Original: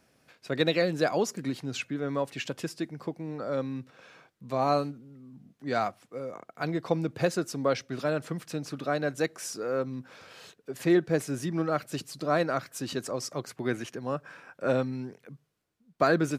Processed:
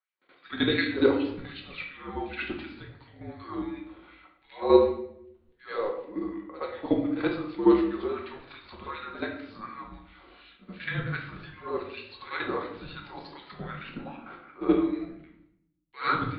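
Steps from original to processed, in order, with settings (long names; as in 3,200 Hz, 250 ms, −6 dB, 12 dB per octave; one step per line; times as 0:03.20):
Butterworth low-pass 4,500 Hz 96 dB per octave
noise gate with hold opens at −49 dBFS
output level in coarse steps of 12 dB
auto-filter high-pass sine 2.7 Hz 510–2,600 Hz
frequency shifter −210 Hz
backwards echo 75 ms −13 dB
rectangular room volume 160 cubic metres, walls mixed, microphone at 1 metre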